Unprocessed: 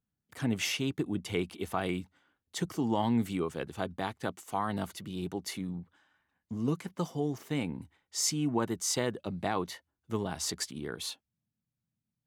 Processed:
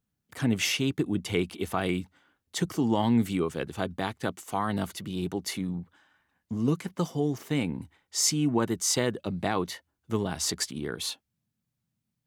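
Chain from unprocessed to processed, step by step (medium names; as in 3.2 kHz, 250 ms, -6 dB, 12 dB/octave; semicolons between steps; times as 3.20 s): dynamic bell 840 Hz, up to -3 dB, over -44 dBFS, Q 1.2; trim +5 dB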